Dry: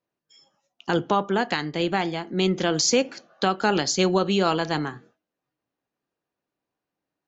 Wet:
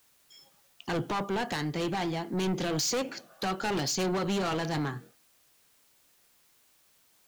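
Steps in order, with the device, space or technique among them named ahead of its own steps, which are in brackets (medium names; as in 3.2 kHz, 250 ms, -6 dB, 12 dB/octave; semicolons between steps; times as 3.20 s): open-reel tape (saturation -27 dBFS, distortion -5 dB; peaking EQ 130 Hz +4.5 dB; white noise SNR 32 dB)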